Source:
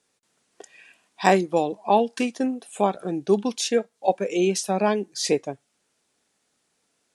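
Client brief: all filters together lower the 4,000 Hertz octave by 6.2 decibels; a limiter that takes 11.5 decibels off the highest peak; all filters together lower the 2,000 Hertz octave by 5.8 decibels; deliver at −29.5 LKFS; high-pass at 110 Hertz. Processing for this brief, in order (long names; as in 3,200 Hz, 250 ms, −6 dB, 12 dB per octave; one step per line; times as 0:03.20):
high-pass filter 110 Hz
parametric band 2,000 Hz −5.5 dB
parametric band 4,000 Hz −7 dB
level −1 dB
brickwall limiter −18 dBFS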